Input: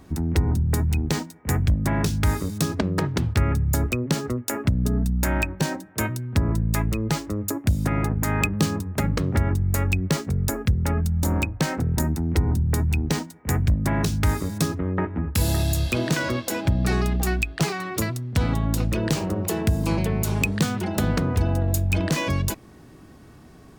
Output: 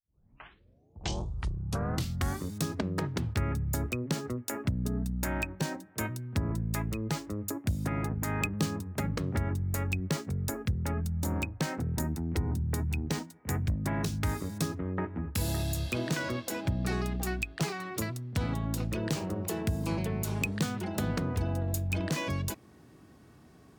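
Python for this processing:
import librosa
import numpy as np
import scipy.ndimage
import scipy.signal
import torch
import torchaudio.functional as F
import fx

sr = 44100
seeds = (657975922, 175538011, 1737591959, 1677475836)

y = fx.tape_start_head(x, sr, length_s=2.54)
y = scipy.signal.sosfilt(scipy.signal.butter(2, 65.0, 'highpass', fs=sr, output='sos'), y)
y = y * 10.0 ** (-8.0 / 20.0)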